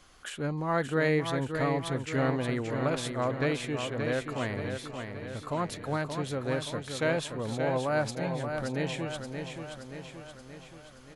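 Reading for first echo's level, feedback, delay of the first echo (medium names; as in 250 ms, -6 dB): -6.5 dB, 56%, 576 ms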